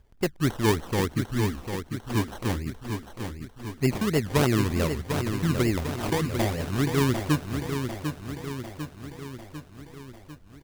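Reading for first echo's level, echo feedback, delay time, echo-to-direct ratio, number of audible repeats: -7.0 dB, 58%, 0.748 s, -5.0 dB, 6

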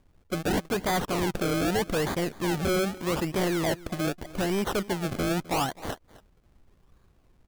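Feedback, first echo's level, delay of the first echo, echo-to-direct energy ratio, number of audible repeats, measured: no steady repeat, -19.5 dB, 0.259 s, -19.5 dB, 1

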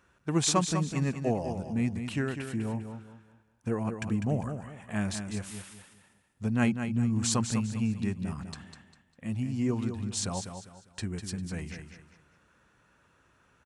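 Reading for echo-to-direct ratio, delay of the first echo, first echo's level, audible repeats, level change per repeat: -7.5 dB, 0.2 s, -8.0 dB, 3, -10.0 dB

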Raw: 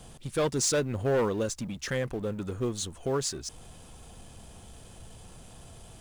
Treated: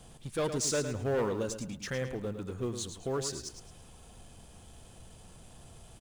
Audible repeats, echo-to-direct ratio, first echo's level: 3, -8.5 dB, -9.0 dB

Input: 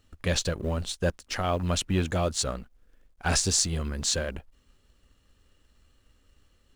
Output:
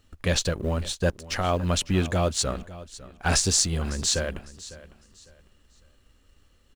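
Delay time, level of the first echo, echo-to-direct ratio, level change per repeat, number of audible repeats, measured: 0.553 s, -17.5 dB, -17.0 dB, -11.0 dB, 2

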